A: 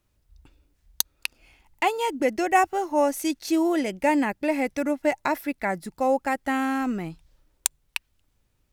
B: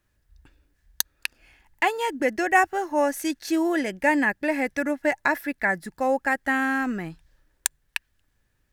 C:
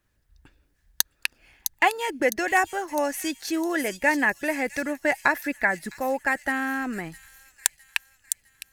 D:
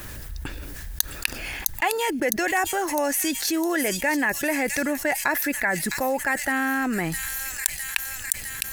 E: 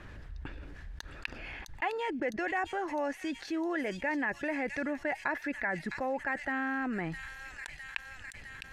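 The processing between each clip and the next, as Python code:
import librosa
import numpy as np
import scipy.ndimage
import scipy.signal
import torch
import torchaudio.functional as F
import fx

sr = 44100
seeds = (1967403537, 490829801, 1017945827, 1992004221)

y1 = fx.peak_eq(x, sr, hz=1700.0, db=13.0, octaves=0.31)
y1 = y1 * 10.0 ** (-1.0 / 20.0)
y2 = fx.hpss(y1, sr, part='harmonic', gain_db=-6)
y2 = fx.echo_wet_highpass(y2, sr, ms=658, feedback_pct=49, hz=5300.0, wet_db=-4)
y2 = y2 * 10.0 ** (2.5 / 20.0)
y3 = fx.high_shelf(y2, sr, hz=9800.0, db=9.5)
y3 = fx.env_flatten(y3, sr, amount_pct=70)
y3 = y3 * 10.0 ** (-5.5 / 20.0)
y4 = scipy.signal.sosfilt(scipy.signal.butter(2, 2600.0, 'lowpass', fs=sr, output='sos'), y3)
y4 = y4 * 10.0 ** (-8.5 / 20.0)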